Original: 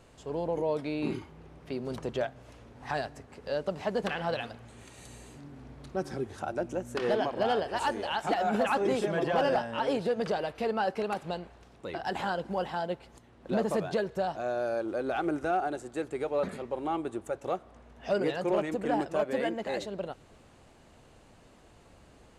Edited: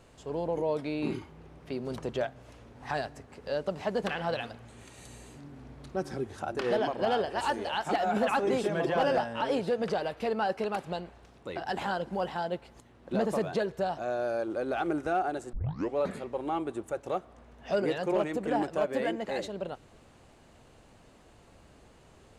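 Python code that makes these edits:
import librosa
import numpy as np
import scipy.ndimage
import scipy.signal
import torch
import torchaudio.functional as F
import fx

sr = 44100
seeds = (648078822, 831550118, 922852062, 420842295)

y = fx.edit(x, sr, fx.cut(start_s=6.55, length_s=0.38),
    fx.tape_start(start_s=15.91, length_s=0.44), tone=tone)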